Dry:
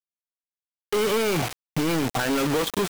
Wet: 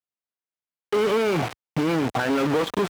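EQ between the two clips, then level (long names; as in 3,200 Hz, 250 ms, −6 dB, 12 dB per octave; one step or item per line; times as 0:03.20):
high-pass filter 61 Hz
low-pass filter 1,900 Hz 6 dB per octave
low-shelf EQ 230 Hz −3.5 dB
+3.0 dB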